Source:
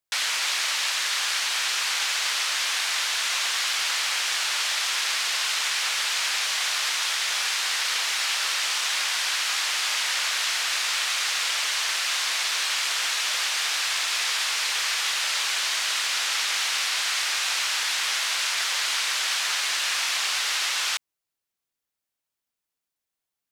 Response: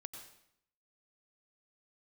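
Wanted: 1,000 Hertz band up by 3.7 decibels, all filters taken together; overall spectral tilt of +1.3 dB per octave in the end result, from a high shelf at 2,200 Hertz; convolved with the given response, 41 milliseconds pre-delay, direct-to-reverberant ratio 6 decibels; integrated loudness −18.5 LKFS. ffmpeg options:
-filter_complex "[0:a]equalizer=frequency=1000:width_type=o:gain=3.5,highshelf=frequency=2200:gain=4.5,asplit=2[link_01][link_02];[1:a]atrim=start_sample=2205,adelay=41[link_03];[link_02][link_03]afir=irnorm=-1:irlink=0,volume=-2dB[link_04];[link_01][link_04]amix=inputs=2:normalize=0"

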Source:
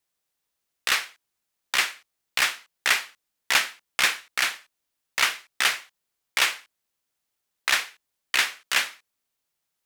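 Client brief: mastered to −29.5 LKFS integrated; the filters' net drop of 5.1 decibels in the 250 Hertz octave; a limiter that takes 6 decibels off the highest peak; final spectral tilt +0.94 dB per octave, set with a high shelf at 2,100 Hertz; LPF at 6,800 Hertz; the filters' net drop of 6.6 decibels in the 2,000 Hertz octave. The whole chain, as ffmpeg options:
ffmpeg -i in.wav -af "lowpass=6800,equalizer=frequency=250:width_type=o:gain=-7,equalizer=frequency=2000:width_type=o:gain=-3,highshelf=frequency=2100:gain=-8.5,volume=4.5dB,alimiter=limit=-14dB:level=0:latency=1" out.wav

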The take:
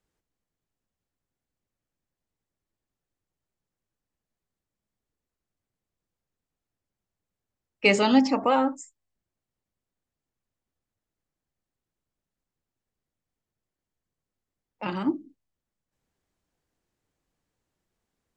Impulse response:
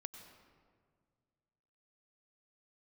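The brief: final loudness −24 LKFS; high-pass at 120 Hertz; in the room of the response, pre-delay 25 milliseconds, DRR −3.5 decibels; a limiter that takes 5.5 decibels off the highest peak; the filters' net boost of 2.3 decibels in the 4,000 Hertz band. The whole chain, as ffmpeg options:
-filter_complex "[0:a]highpass=120,equalizer=frequency=4000:width_type=o:gain=3.5,alimiter=limit=-11.5dB:level=0:latency=1,asplit=2[link_01][link_02];[1:a]atrim=start_sample=2205,adelay=25[link_03];[link_02][link_03]afir=irnorm=-1:irlink=0,volume=7.5dB[link_04];[link_01][link_04]amix=inputs=2:normalize=0,volume=-2.5dB"

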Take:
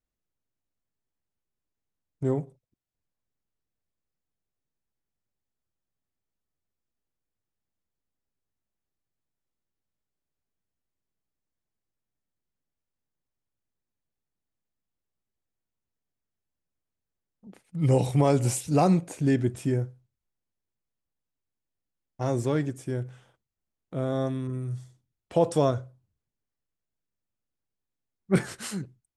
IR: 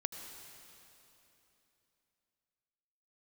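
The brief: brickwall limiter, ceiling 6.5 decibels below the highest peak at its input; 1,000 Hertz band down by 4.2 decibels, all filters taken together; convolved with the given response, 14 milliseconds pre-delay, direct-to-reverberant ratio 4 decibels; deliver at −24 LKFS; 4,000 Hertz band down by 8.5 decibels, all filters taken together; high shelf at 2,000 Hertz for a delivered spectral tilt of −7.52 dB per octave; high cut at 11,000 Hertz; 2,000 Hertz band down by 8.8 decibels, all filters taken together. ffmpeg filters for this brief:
-filter_complex "[0:a]lowpass=11000,equalizer=frequency=1000:width_type=o:gain=-4,highshelf=frequency=2000:gain=-5.5,equalizer=frequency=2000:width_type=o:gain=-6,equalizer=frequency=4000:width_type=o:gain=-3.5,alimiter=limit=-16.5dB:level=0:latency=1,asplit=2[link_01][link_02];[1:a]atrim=start_sample=2205,adelay=14[link_03];[link_02][link_03]afir=irnorm=-1:irlink=0,volume=-4dB[link_04];[link_01][link_04]amix=inputs=2:normalize=0,volume=4.5dB"

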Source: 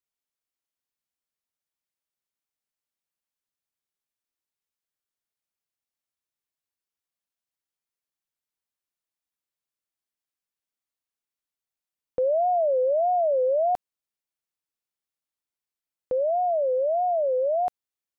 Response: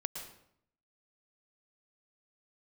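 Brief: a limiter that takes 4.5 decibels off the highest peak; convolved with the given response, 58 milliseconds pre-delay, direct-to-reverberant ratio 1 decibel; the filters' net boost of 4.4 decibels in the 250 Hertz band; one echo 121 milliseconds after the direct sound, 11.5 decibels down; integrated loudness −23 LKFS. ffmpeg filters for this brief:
-filter_complex "[0:a]equalizer=frequency=250:width_type=o:gain=6,alimiter=limit=-21dB:level=0:latency=1,aecho=1:1:121:0.266,asplit=2[link_01][link_02];[1:a]atrim=start_sample=2205,adelay=58[link_03];[link_02][link_03]afir=irnorm=-1:irlink=0,volume=-1.5dB[link_04];[link_01][link_04]amix=inputs=2:normalize=0"

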